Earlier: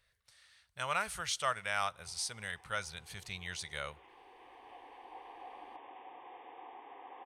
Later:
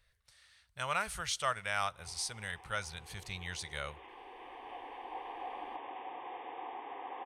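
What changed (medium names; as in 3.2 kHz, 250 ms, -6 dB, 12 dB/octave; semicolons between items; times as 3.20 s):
speech: add bass shelf 67 Hz +11.5 dB; background +7.0 dB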